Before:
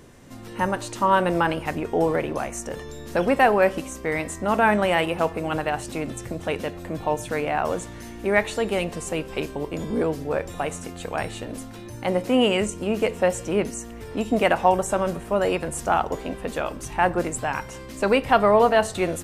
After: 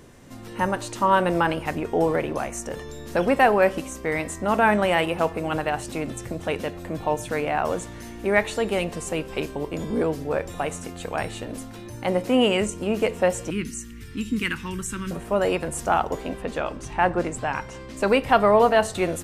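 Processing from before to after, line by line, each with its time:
0:13.50–0:15.11: Butterworth band-reject 660 Hz, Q 0.52
0:16.42–0:17.97: high-frequency loss of the air 54 metres

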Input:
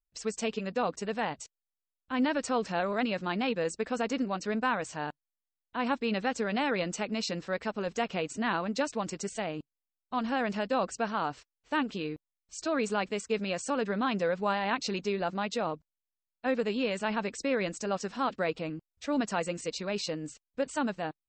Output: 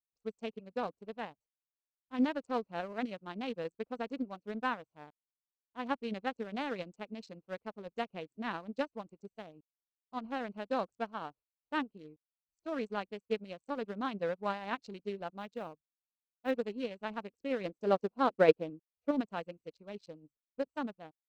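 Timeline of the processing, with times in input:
0:15.36–0:16.51: floating-point word with a short mantissa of 4 bits
0:17.65–0:19.11: parametric band 440 Hz +7 dB 1.4 octaves
whole clip: adaptive Wiener filter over 25 samples; expander for the loud parts 2.5 to 1, over −47 dBFS; level +4 dB

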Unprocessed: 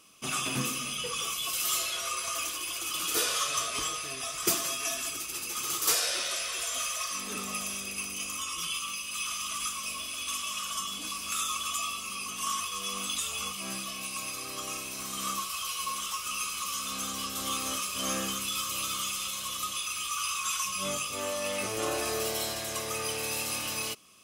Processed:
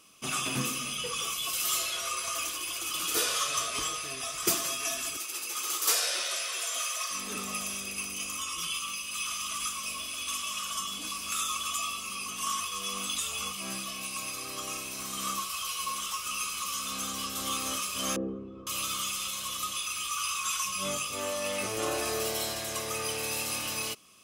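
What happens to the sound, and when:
0:05.17–0:07.10: high-pass filter 370 Hz
0:18.16–0:18.67: low-pass with resonance 410 Hz, resonance Q 3.6

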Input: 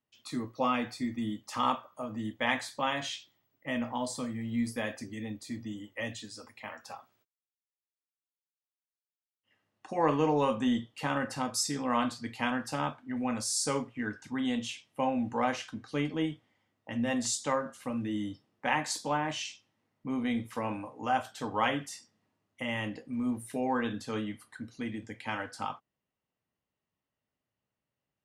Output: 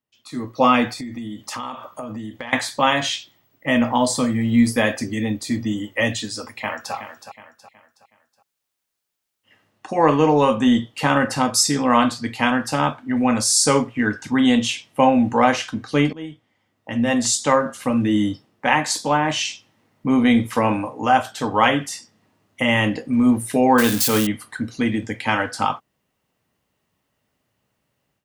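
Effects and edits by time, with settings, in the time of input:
0:00.91–0:02.53: downward compressor 12 to 1, threshold −42 dBFS
0:06.51–0:06.94: delay throw 370 ms, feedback 40%, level −10.5 dB
0:16.13–0:17.73: fade in, from −20 dB
0:23.78–0:24.27: spike at every zero crossing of −27.5 dBFS
whole clip: automatic gain control gain up to 16 dB

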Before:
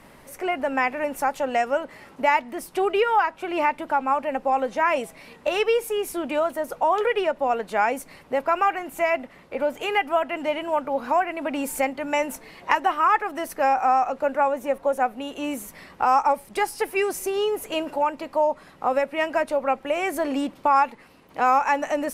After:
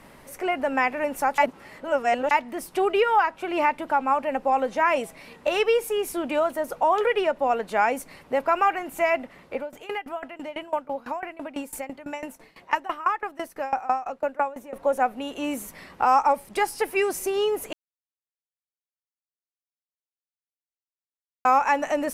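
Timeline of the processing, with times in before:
0:01.38–0:02.31: reverse
0:09.56–0:14.76: tremolo with a ramp in dB decaying 6 Hz, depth 20 dB
0:17.73–0:21.45: silence

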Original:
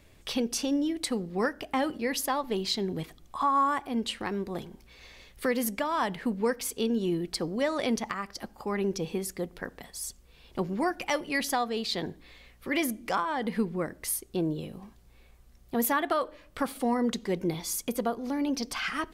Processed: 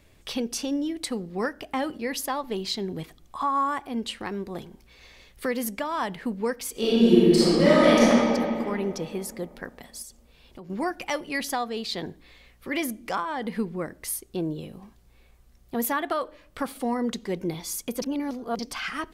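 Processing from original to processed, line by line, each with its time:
0:06.71–0:08.05: thrown reverb, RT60 2.6 s, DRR −11.5 dB
0:10.02–0:10.70: downward compressor 4 to 1, threshold −41 dBFS
0:18.02–0:18.59: reverse

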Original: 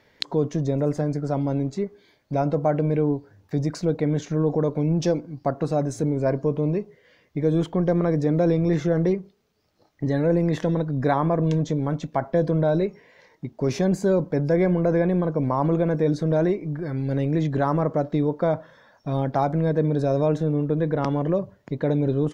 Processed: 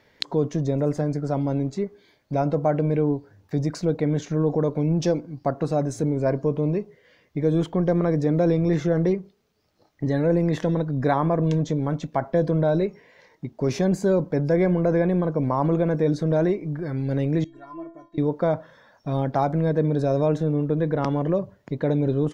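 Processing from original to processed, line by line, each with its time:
0:17.44–0:18.18: stiff-string resonator 330 Hz, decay 0.35 s, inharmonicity 0.008

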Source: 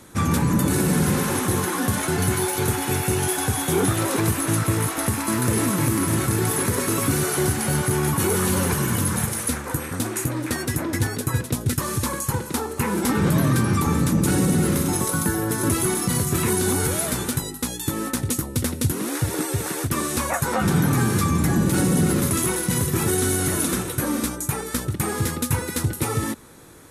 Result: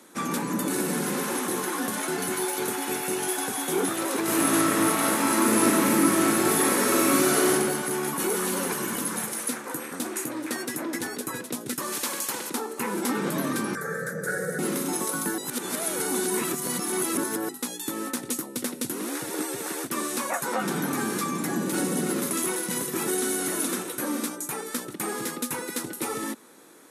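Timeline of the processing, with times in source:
0:04.23–0:07.53: thrown reverb, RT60 1.1 s, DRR −6 dB
0:11.92–0:12.50: every bin compressed towards the loudest bin 2 to 1
0:13.75–0:14.59: drawn EQ curve 160 Hz 0 dB, 290 Hz −24 dB, 480 Hz +8 dB, 1,000 Hz −19 dB, 1,600 Hz +14 dB, 2,700 Hz −23 dB, 4,100 Hz −12 dB, 8,200 Hz −6 dB
0:15.38–0:17.49: reverse
whole clip: high-pass filter 220 Hz 24 dB per octave; level −4 dB

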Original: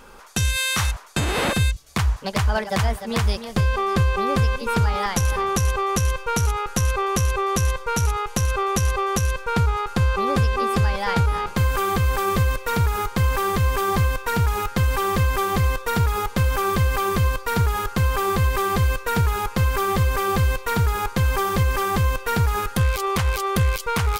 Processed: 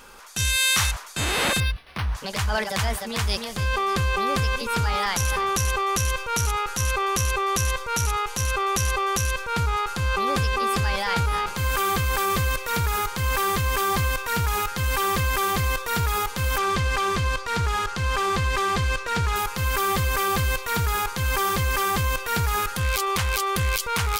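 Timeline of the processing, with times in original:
0:01.60–0:02.15: linearly interpolated sample-rate reduction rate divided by 6×
0:16.58–0:19.36: low-pass filter 6,900 Hz
whole clip: tilt shelving filter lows −4.5 dB, about 1,200 Hz; transient designer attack −8 dB, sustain +4 dB

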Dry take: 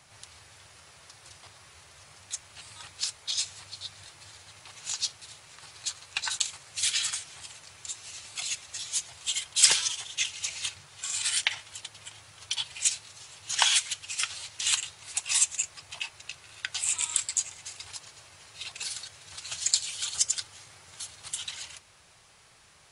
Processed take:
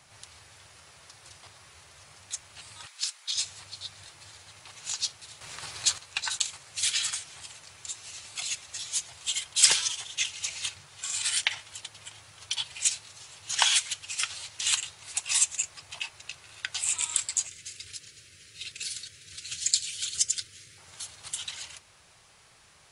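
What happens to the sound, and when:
0:02.86–0:03.36: high-pass filter 1,100 Hz
0:05.41–0:05.98: clip gain +8.5 dB
0:17.47–0:20.78: Butterworth band-reject 860 Hz, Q 0.72

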